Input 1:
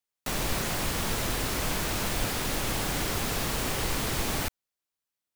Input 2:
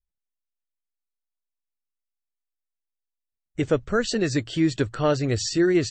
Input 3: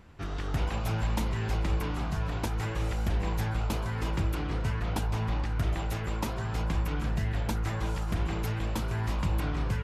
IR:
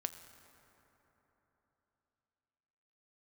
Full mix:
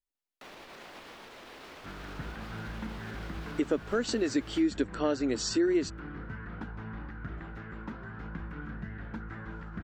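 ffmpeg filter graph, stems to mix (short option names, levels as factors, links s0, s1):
-filter_complex "[0:a]alimiter=level_in=1.33:limit=0.0631:level=0:latency=1:release=111,volume=0.75,acrossover=split=250 4500:gain=0.126 1 0.126[s0][s1][s2];[s0][s1][s2]amix=inputs=3:normalize=0,adelay=150,volume=0.398[s3];[1:a]lowshelf=f=200:t=q:w=3:g=-9,volume=0.708[s4];[2:a]firequalizer=gain_entry='entry(110,0);entry(190,10);entry(610,-1);entry(990,2);entry(1500,13);entry(2400,-2);entry(10000,-27)':delay=0.05:min_phase=1,adelay=1650,volume=0.211[s5];[s3][s4][s5]amix=inputs=3:normalize=0,acompressor=threshold=0.0355:ratio=2"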